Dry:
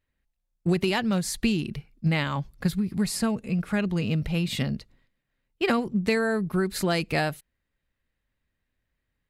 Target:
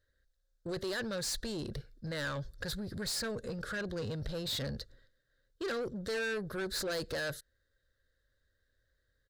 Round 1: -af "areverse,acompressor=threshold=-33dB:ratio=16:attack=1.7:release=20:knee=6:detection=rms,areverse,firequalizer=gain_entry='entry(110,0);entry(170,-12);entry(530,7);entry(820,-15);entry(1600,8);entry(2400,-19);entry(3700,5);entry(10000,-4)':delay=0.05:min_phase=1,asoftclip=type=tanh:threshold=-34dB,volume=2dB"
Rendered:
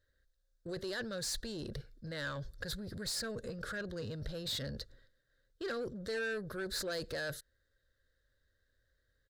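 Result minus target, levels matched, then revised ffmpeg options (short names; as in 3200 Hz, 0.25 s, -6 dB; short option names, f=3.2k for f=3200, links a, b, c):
compressor: peak gain reduction +5.5 dB
-af "areverse,acompressor=threshold=-27dB:ratio=16:attack=1.7:release=20:knee=6:detection=rms,areverse,firequalizer=gain_entry='entry(110,0);entry(170,-12);entry(530,7);entry(820,-15);entry(1600,8);entry(2400,-19);entry(3700,5);entry(10000,-4)':delay=0.05:min_phase=1,asoftclip=type=tanh:threshold=-34dB,volume=2dB"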